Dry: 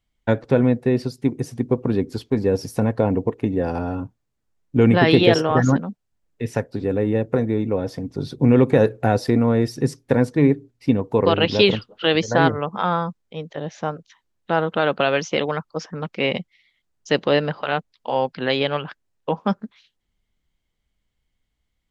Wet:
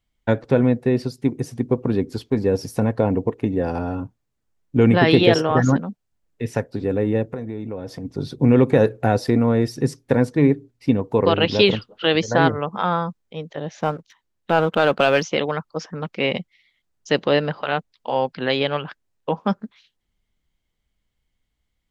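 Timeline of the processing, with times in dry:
7.24–8.05 s: compression 3:1, threshold -28 dBFS
13.80–15.23 s: waveshaping leveller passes 1

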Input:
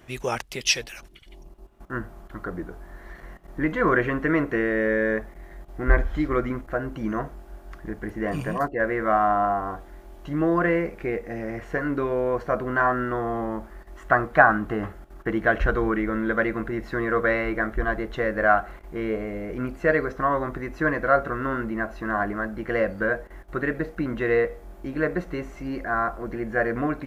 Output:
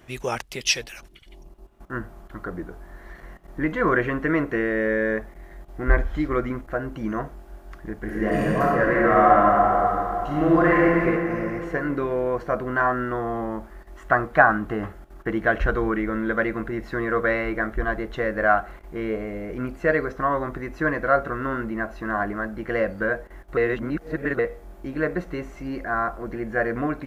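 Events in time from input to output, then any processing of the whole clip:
8.00–11.04 s: reverb throw, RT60 3 s, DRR -4.5 dB
23.57–24.39 s: reverse

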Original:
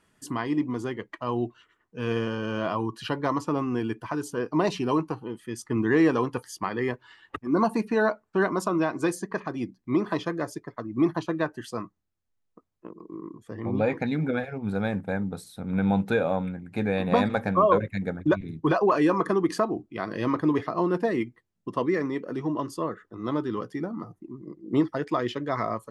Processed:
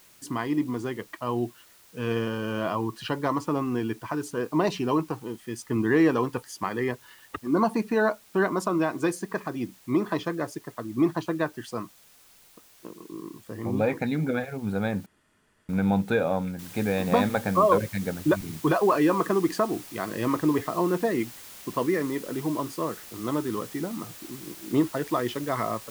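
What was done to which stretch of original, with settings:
15.06–15.69 s: room tone
16.59 s: noise floor step -56 dB -45 dB

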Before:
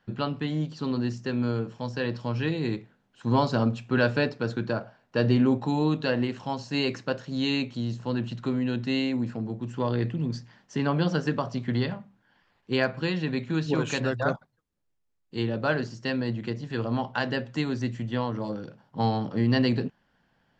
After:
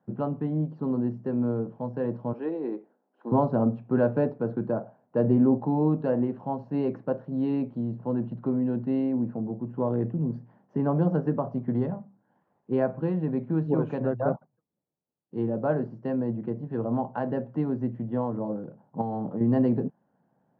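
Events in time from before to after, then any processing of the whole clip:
2.33–3.32 s: high-pass 290 Hz 24 dB/octave
19.01–19.41 s: compression, threshold -27 dBFS
whole clip: Chebyshev band-pass 150–770 Hz, order 2; trim +2 dB

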